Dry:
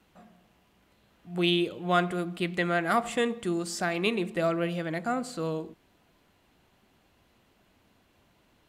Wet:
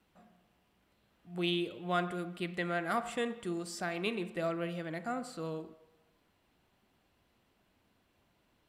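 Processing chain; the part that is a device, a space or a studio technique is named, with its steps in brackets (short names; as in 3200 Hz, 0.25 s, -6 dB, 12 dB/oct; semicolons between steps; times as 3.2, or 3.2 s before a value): filtered reverb send (on a send: HPF 550 Hz 12 dB/oct + LPF 3400 Hz + reverb RT60 1.2 s, pre-delay 30 ms, DRR 13.5 dB); on the sum: notch 6600 Hz, Q 17; gain -7.5 dB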